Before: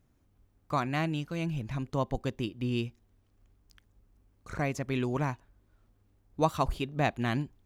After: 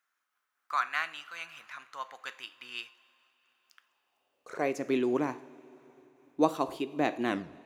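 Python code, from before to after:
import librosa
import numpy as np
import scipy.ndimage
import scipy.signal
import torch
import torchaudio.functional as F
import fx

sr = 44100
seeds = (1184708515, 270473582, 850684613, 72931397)

y = fx.tape_stop_end(x, sr, length_s=0.37)
y = fx.filter_sweep_highpass(y, sr, from_hz=1400.0, to_hz=320.0, start_s=3.69, end_s=4.78, q=2.9)
y = fx.rev_double_slope(y, sr, seeds[0], early_s=0.53, late_s=4.6, knee_db=-18, drr_db=11.0)
y = fx.am_noise(y, sr, seeds[1], hz=5.7, depth_pct=50)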